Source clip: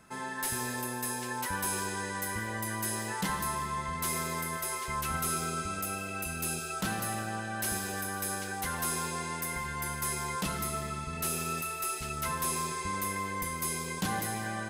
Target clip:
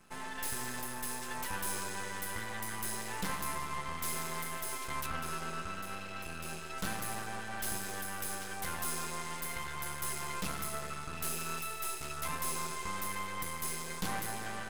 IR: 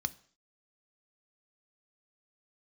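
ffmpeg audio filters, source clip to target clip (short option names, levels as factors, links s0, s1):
-filter_complex "[0:a]asettb=1/sr,asplit=3[s0][s1][s2];[s0]atrim=end=5.064[s3];[s1]atrim=start=5.06:end=6.78,asetpts=PTS-STARTPTS,afade=t=in:d=0.004:c=qsin,afade=t=out:st=1.716:d=0.004:c=qsin,aemphasis=mode=reproduction:type=50kf[s4];[s2]atrim=start=6.776[s5];[s3][s4]acrossfade=d=0.004:c1=hsin:c2=qsin[s6];[s6][s5]acrossfade=d=0.004:c1=qsin:c2=hsin,aeval=exprs='max(val(0),0)':c=same"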